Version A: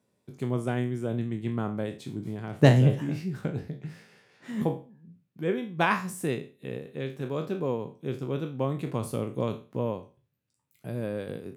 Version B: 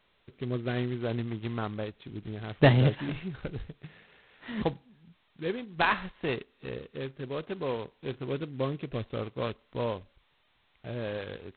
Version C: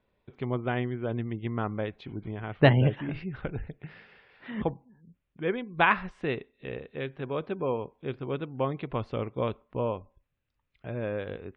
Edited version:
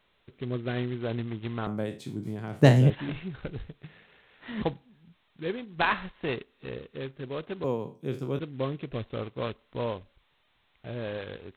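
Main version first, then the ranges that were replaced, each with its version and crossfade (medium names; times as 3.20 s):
B
1.67–2.90 s: from A
7.64–8.39 s: from A
not used: C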